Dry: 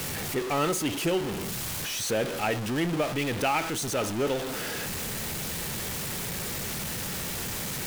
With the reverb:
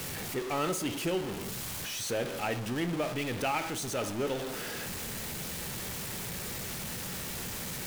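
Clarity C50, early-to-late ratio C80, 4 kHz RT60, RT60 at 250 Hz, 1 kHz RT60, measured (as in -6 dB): 15.0 dB, 17.0 dB, 0.50 s, 0.95 s, 0.80 s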